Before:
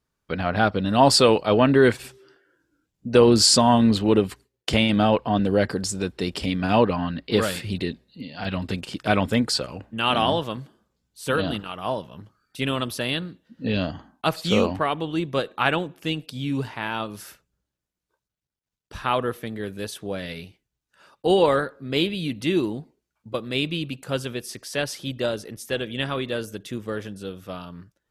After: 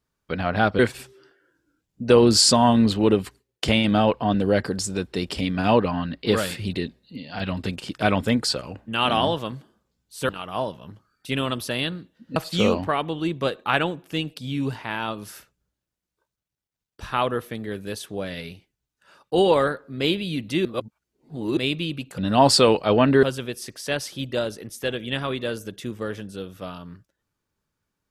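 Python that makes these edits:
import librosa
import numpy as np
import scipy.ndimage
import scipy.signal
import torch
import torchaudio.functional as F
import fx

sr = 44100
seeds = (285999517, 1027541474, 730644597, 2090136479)

y = fx.edit(x, sr, fx.move(start_s=0.79, length_s=1.05, to_s=24.1),
    fx.cut(start_s=11.34, length_s=0.25),
    fx.cut(start_s=13.66, length_s=0.62),
    fx.reverse_span(start_s=22.57, length_s=0.92), tone=tone)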